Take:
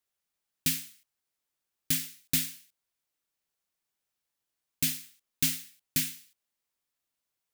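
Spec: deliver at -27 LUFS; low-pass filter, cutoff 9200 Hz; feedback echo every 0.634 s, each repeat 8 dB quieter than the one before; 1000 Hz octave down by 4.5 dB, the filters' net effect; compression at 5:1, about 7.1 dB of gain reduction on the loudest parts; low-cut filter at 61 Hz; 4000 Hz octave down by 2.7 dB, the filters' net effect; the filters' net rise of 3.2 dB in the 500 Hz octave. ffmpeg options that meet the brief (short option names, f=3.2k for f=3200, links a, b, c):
-af "highpass=61,lowpass=9.2k,equalizer=f=500:t=o:g=6,equalizer=f=1k:t=o:g=-8,equalizer=f=4k:t=o:g=-3,acompressor=threshold=-35dB:ratio=5,aecho=1:1:634|1268|1902|2536|3170:0.398|0.159|0.0637|0.0255|0.0102,volume=16dB"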